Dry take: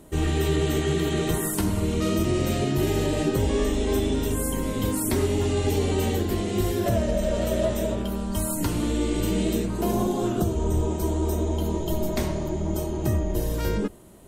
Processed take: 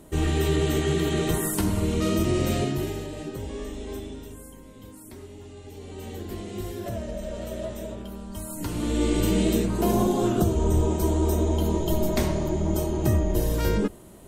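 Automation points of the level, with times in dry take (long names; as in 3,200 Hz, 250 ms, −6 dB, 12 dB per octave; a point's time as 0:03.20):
0:02.60 0 dB
0:03.08 −11 dB
0:03.93 −11 dB
0:04.61 −19.5 dB
0:05.69 −19.5 dB
0:06.31 −9 dB
0:08.47 −9 dB
0:09.05 +2 dB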